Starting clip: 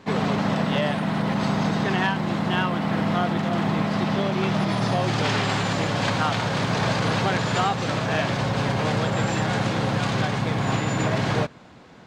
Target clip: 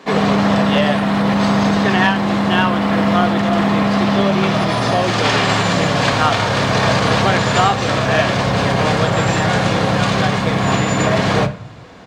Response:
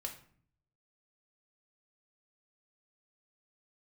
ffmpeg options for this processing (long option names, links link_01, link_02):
-filter_complex "[0:a]acrossover=split=180[link_01][link_02];[link_01]adelay=50[link_03];[link_03][link_02]amix=inputs=2:normalize=0,asplit=2[link_04][link_05];[1:a]atrim=start_sample=2205,asetrate=43659,aresample=44100[link_06];[link_05][link_06]afir=irnorm=-1:irlink=0,volume=0.5dB[link_07];[link_04][link_07]amix=inputs=2:normalize=0,volume=4dB"